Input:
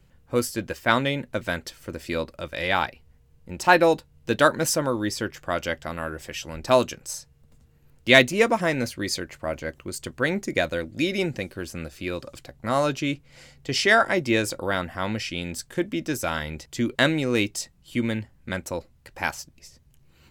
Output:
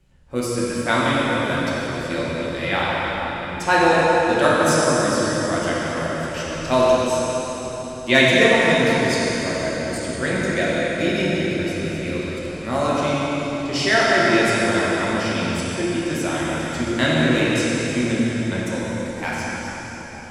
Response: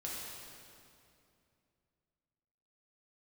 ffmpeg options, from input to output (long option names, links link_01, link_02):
-filter_complex "[1:a]atrim=start_sample=2205,asetrate=22050,aresample=44100[link_01];[0:a][link_01]afir=irnorm=-1:irlink=0,volume=-1.5dB"